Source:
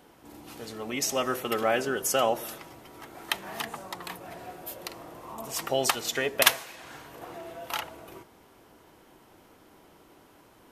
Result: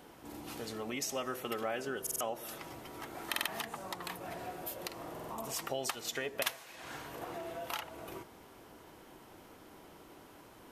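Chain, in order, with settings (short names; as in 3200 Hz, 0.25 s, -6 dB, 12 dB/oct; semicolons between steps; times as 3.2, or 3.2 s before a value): compressor 2.5:1, threshold -40 dBFS, peak gain reduction 17.5 dB; stuck buffer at 2.02/3.29/5.12, samples 2048, times 3; gain +1 dB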